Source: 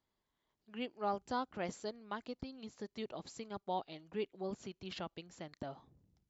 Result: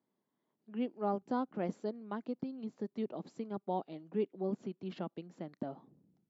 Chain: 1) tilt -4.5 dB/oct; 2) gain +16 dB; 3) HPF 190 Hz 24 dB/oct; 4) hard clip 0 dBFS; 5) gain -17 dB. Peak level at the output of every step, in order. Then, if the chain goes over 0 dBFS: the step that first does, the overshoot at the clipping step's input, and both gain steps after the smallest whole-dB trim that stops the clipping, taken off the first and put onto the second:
-18.5, -2.5, -5.5, -5.5, -22.5 dBFS; no overload

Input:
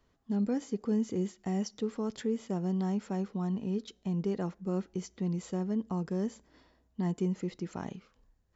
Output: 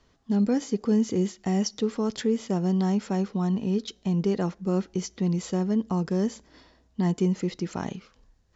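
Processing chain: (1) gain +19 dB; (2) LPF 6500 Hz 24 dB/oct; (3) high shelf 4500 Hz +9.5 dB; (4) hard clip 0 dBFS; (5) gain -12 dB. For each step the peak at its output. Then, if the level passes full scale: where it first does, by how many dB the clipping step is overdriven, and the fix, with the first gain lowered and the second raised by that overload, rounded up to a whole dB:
-2.0, -2.0, -2.0, -2.0, -14.0 dBFS; no overload

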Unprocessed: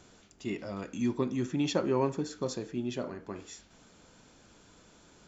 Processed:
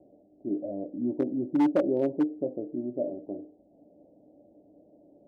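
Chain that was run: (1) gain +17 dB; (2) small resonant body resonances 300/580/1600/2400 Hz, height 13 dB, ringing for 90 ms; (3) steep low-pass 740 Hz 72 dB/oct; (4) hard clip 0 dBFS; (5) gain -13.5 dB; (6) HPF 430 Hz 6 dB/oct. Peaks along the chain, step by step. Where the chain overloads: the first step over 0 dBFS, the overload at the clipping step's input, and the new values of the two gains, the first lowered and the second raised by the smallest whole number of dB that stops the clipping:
+2.0, +5.5, +5.0, 0.0, -13.5, -13.0 dBFS; step 1, 5.0 dB; step 1 +12 dB, step 5 -8.5 dB

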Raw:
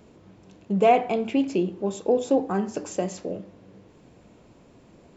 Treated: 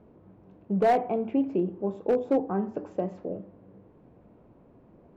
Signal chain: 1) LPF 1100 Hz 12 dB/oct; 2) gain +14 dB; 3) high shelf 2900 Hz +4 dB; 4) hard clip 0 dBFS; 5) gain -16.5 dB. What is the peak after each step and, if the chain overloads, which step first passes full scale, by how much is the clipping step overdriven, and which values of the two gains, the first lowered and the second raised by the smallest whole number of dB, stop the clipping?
-7.0, +7.0, +7.0, 0.0, -16.5 dBFS; step 2, 7.0 dB; step 2 +7 dB, step 5 -9.5 dB

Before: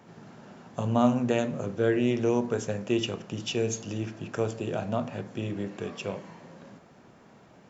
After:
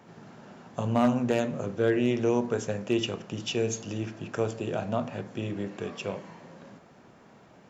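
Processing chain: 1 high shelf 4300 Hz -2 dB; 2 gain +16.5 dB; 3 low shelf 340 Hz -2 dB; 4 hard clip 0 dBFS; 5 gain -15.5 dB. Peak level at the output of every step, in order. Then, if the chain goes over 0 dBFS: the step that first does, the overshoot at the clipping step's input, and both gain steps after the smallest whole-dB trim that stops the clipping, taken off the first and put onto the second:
-9.5, +7.0, +6.0, 0.0, -15.5 dBFS; step 2, 6.0 dB; step 2 +10.5 dB, step 5 -9.5 dB

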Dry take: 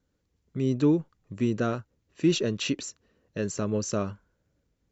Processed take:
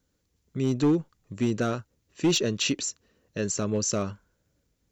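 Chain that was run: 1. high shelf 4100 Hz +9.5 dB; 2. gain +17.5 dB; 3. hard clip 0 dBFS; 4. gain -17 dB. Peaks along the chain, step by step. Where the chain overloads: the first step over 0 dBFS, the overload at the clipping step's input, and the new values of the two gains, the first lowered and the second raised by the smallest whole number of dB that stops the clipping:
-12.0, +5.5, 0.0, -17.0 dBFS; step 2, 5.5 dB; step 2 +11.5 dB, step 4 -11 dB

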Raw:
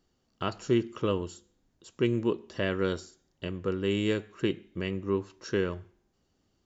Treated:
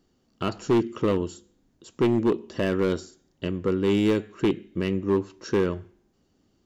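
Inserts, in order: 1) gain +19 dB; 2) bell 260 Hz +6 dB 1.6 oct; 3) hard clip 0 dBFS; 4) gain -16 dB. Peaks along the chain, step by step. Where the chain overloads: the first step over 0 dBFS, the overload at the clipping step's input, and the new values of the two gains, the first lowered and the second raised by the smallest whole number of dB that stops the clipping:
+5.0, +9.5, 0.0, -16.0 dBFS; step 1, 9.5 dB; step 1 +9 dB, step 4 -6 dB

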